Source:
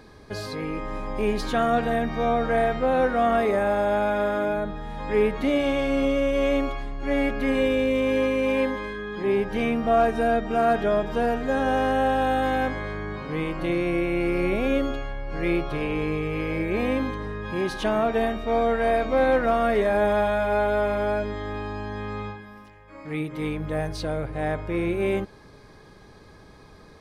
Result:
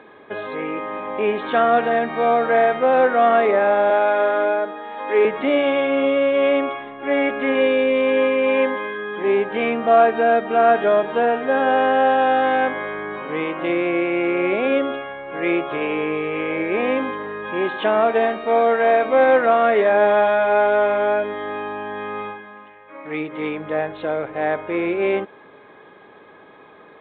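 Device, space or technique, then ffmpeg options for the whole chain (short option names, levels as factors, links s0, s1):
telephone: -filter_complex "[0:a]asettb=1/sr,asplit=3[s0][s1][s2];[s0]atrim=end=3.904[s3];[s1]atrim=start=3.9:end=5.25,asetpts=PTS-STARTPTS,afade=t=in:d=0.004:c=qsin,afade=t=out:st=1.346:d=0.004:c=qsin,highpass=f=260:w=0.5412,highpass=f=260:w=1.3066[s4];[s2]atrim=start=5.246[s5];[s3][s4]acrossfade=d=0.004:c1=hsin:c2=qsin[s6];[s6][s5]acrossfade=d=0.004:c1=qsin:c2=hsin,highpass=350,lowpass=3300,volume=2.24" -ar 8000 -c:a pcm_alaw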